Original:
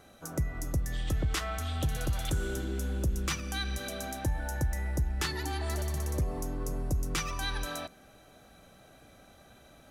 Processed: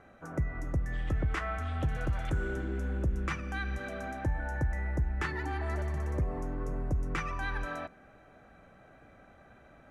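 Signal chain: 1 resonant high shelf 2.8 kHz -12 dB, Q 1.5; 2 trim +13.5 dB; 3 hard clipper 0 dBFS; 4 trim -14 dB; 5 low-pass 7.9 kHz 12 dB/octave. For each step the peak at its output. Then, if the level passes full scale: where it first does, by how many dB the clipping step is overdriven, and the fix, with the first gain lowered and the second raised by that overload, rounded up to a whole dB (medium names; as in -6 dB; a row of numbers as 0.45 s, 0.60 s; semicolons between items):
-19.5 dBFS, -6.0 dBFS, -6.0 dBFS, -20.0 dBFS, -20.0 dBFS; nothing clips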